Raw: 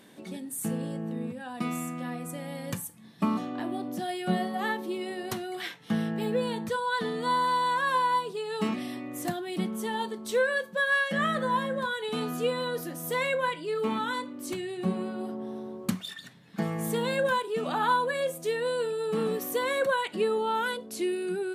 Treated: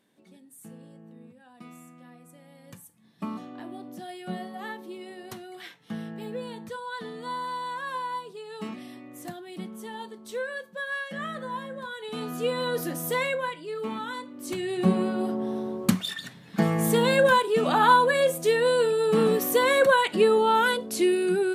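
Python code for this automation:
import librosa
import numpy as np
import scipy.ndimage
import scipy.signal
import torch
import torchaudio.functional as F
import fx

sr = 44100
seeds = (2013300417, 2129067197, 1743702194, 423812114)

y = fx.gain(x, sr, db=fx.line((2.57, -15.0), (3.23, -7.0), (11.82, -7.0), (12.92, 6.0), (13.54, -3.5), (14.29, -3.5), (14.76, 7.0)))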